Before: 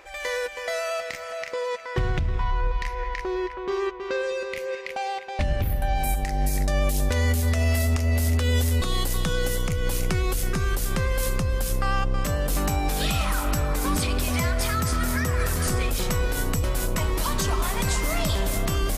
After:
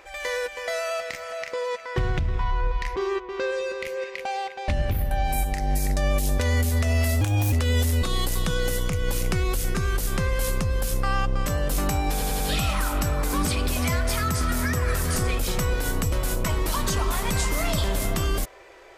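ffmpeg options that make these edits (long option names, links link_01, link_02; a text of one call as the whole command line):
ffmpeg -i in.wav -filter_complex "[0:a]asplit=7[link_01][link_02][link_03][link_04][link_05][link_06][link_07];[link_01]atrim=end=2.962[link_08];[link_02]atrim=start=3.668:end=7.924[link_09];[link_03]atrim=start=7.92:end=8.31,asetpts=PTS-STARTPTS,asetrate=54684,aresample=44100,atrim=end_sample=13870,asetpts=PTS-STARTPTS[link_10];[link_04]atrim=start=8.306:end=13.002[link_11];[link_05]atrim=start=12.908:end=13.002[link_12];[link_06]atrim=start=12.908:end=13.002[link_13];[link_07]atrim=start=12.908[link_14];[link_08][link_09]acrossfade=duration=0.004:curve1=hsin:curve2=hsin[link_15];[link_15][link_10]acrossfade=duration=0.004:curve1=hsin:curve2=hsin[link_16];[link_16][link_11]acrossfade=duration=0.004:curve1=hsin:curve2=hsin[link_17];[link_17][link_12]acrossfade=duration=0.004:curve1=hsin:curve2=hsin[link_18];[link_18][link_13]acrossfade=duration=0.004:curve1=hsin:curve2=hsin[link_19];[link_19][link_14]acrossfade=duration=0.004:curve1=hsin:curve2=hsin" out.wav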